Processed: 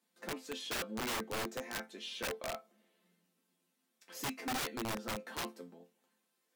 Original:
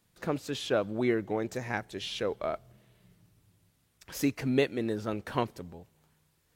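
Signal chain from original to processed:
elliptic high-pass filter 200 Hz, stop band 40 dB
resonators tuned to a chord F3 major, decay 0.2 s
wrap-around overflow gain 39.5 dB
level +7.5 dB

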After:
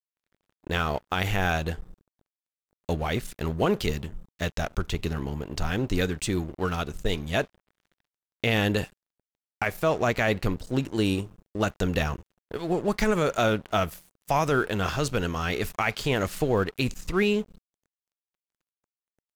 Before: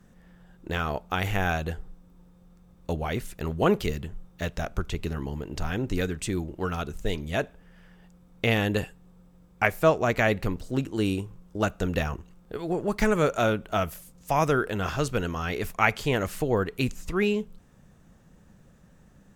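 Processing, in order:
brickwall limiter −15.5 dBFS, peak gain reduction 11 dB
dynamic equaliser 4,200 Hz, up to +4 dB, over −52 dBFS, Q 1.2
dead-zone distortion −46 dBFS
level +2.5 dB

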